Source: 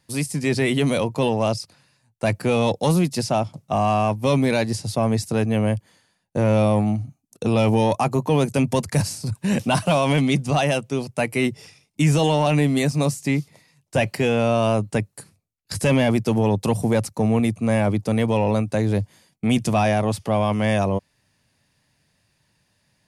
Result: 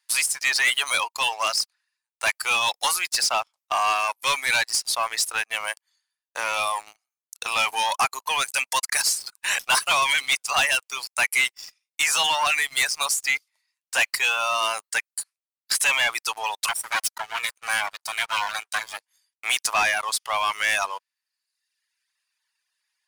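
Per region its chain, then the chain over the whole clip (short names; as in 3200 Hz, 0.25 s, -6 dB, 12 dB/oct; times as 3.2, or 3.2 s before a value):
16.68–18.98 minimum comb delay 1.3 ms + HPF 790 Hz 6 dB/oct
whole clip: HPF 1100 Hz 24 dB/oct; reverb removal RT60 1.2 s; sample leveller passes 3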